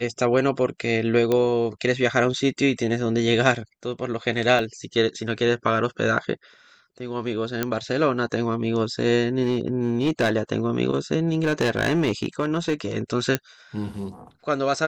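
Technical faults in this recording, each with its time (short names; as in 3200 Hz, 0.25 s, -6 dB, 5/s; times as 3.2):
1.32 pop -10 dBFS
4.59 gap 2.6 ms
7.63 pop -8 dBFS
9.43–10.3 clipped -16 dBFS
11.32–12.74 clipped -16 dBFS
13.35 pop -6 dBFS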